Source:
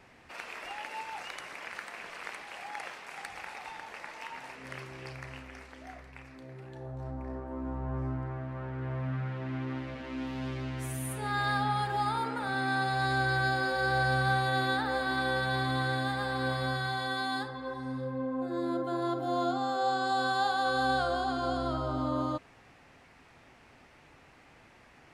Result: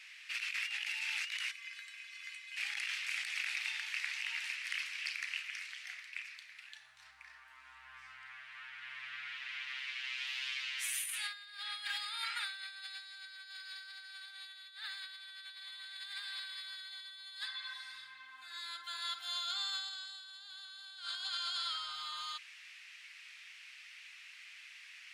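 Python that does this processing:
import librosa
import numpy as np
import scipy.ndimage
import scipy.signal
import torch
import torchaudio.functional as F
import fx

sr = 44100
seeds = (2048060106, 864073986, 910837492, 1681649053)

y = fx.comb_fb(x, sr, f0_hz=230.0, decay_s=0.18, harmonics='odd', damping=0.0, mix_pct=90, at=(1.5, 2.56), fade=0.02)
y = scipy.signal.sosfilt(scipy.signal.cheby2(4, 70, 540.0, 'highpass', fs=sr, output='sos'), y)
y = fx.tilt_eq(y, sr, slope=-3.5)
y = fx.over_compress(y, sr, threshold_db=-55.0, ratio=-0.5)
y = y * 10.0 ** (14.0 / 20.0)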